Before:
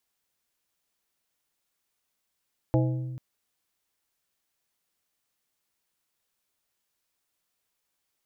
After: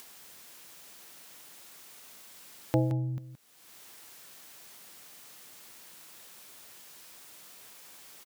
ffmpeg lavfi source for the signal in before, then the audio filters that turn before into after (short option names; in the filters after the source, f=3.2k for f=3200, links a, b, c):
-f lavfi -i "aevalsrc='0.1*pow(10,-3*t/1.69)*sin(2*PI*128*t)+0.0708*pow(10,-3*t/0.89)*sin(2*PI*320*t)+0.0501*pow(10,-3*t/0.64)*sin(2*PI*512*t)+0.0355*pow(10,-3*t/0.548)*sin(2*PI*640*t)+0.0251*pow(10,-3*t/0.456)*sin(2*PI*832*t)':d=0.44:s=44100"
-filter_complex "[0:a]highpass=120,acompressor=mode=upward:threshold=-29dB:ratio=2.5,asplit=2[a][b];[b]aecho=0:1:171:0.299[c];[a][c]amix=inputs=2:normalize=0"